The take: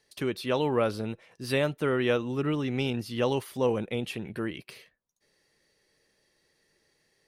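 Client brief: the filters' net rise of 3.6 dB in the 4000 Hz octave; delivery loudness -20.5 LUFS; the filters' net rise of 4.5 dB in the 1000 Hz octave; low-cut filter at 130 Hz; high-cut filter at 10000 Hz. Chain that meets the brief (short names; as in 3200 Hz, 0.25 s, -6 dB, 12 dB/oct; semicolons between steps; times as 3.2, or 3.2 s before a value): HPF 130 Hz; LPF 10000 Hz; bell 1000 Hz +5.5 dB; bell 4000 Hz +4.5 dB; gain +8 dB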